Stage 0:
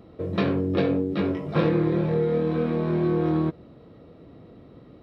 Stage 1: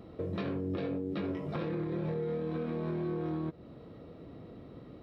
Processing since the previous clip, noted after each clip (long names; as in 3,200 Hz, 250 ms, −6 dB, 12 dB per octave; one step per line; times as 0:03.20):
brickwall limiter −19 dBFS, peak gain reduction 8.5 dB
downward compressor 2 to 1, threshold −36 dBFS, peak gain reduction 7.5 dB
level −1 dB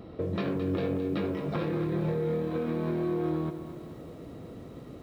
feedback echo at a low word length 217 ms, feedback 55%, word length 10 bits, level −10 dB
level +4.5 dB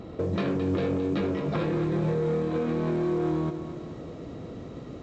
soft clipping −23.5 dBFS, distortion −20 dB
level +4.5 dB
mu-law 128 kbit/s 16,000 Hz